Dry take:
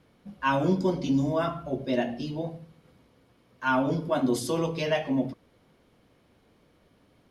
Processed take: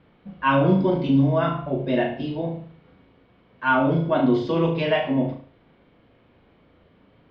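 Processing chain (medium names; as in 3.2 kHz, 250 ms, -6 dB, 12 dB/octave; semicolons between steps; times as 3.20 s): inverse Chebyshev low-pass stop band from 9.9 kHz, stop band 60 dB; on a send: flutter echo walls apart 6.2 m, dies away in 0.41 s; on the sum: trim +4 dB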